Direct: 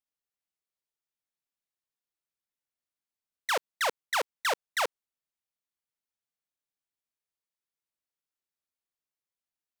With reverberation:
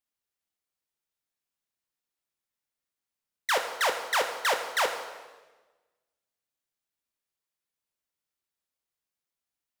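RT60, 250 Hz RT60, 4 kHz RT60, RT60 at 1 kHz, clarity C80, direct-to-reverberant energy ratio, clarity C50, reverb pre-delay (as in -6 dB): 1.3 s, 1.5 s, 1.1 s, 1.2 s, 9.5 dB, 5.0 dB, 8.0 dB, 11 ms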